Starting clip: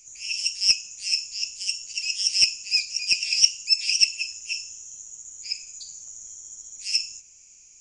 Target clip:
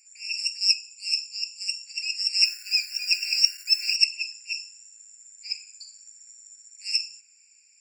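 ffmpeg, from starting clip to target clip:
ffmpeg -i in.wav -filter_complex "[0:a]asettb=1/sr,asplit=3[link_01][link_02][link_03];[link_01]atrim=end=0.584[link_04];[link_02]atrim=start=0.58:end=1.62,asetpts=PTS-STARTPTS,afade=type=in:duration=0.004:curve=qsin,afade=type=out:start_time=1.036:duration=0.004:curve=qsin,asuperstop=centerf=1700:order=4:qfactor=1.5[link_05];[link_03]atrim=start=1.616[link_06];[link_04][link_05]acrossfade=duration=0.004:curve1=hsin:curve2=qsin[link_07];[link_07][link_06]acrossfade=duration=0.004:curve1=qsin:curve2=hsin,asettb=1/sr,asplit=3[link_08][link_09][link_10];[link_08]atrim=end=2.444[link_11];[link_09]atrim=start=2.44:end=3.96,asetpts=PTS-STARTPTS,afade=type=in:duration=0.004:curve=qsin,afade=type=out:start_time=1.516:duration=0.004:curve=qsin,acrusher=bits=7:dc=4:mix=0:aa=0.000001[link_12];[link_10]atrim=start=3.956[link_13];[link_11][link_12]acrossfade=duration=0.004:curve1=hsin:curve2=qsin[link_14];[link_14][link_13]acrossfade=duration=0.004:curve1=qsin:curve2=hsin,afftfilt=real='re*eq(mod(floor(b*sr/1024/1400),2),1)':imag='im*eq(mod(floor(b*sr/1024/1400),2),1)':win_size=1024:overlap=0.75,volume=-1dB" out.wav

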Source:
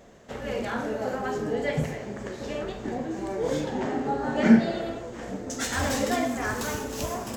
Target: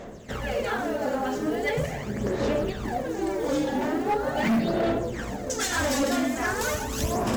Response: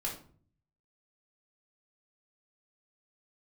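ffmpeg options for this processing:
-filter_complex "[0:a]bandreject=frequency=47.64:width_type=h:width=4,bandreject=frequency=95.28:width_type=h:width=4,bandreject=frequency=142.92:width_type=h:width=4,bandreject=frequency=190.56:width_type=h:width=4,bandreject=frequency=238.2:width_type=h:width=4,bandreject=frequency=285.84:width_type=h:width=4,asplit=2[link_01][link_02];[link_02]acompressor=threshold=-34dB:ratio=6,volume=2dB[link_03];[link_01][link_03]amix=inputs=2:normalize=0,acrusher=bits=7:mode=log:mix=0:aa=0.000001,aphaser=in_gain=1:out_gain=1:delay=3.6:decay=0.6:speed=0.41:type=sinusoidal,asoftclip=type=hard:threshold=-17.5dB,volume=-2.5dB"

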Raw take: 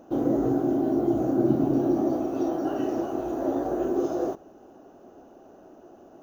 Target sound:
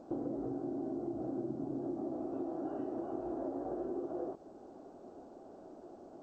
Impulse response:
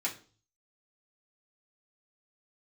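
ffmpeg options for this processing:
-af "lowshelf=frequency=110:gain=-2.5,acompressor=threshold=-33dB:ratio=12,lowpass=1200,volume=-2dB" -ar 16000 -c:a g722

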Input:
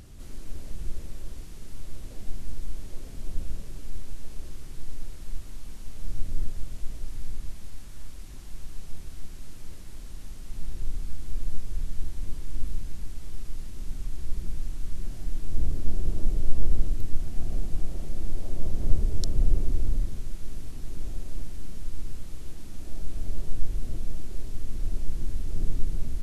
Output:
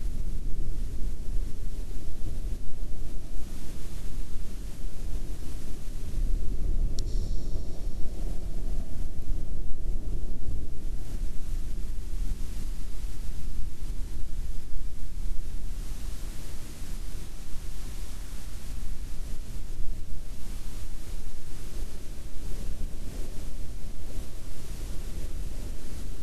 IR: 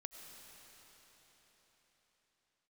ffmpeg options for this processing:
-filter_complex "[0:a]areverse,acompressor=threshold=-28dB:ratio=3[link_01];[1:a]atrim=start_sample=2205[link_02];[link_01][link_02]afir=irnorm=-1:irlink=0,volume=10.5dB"

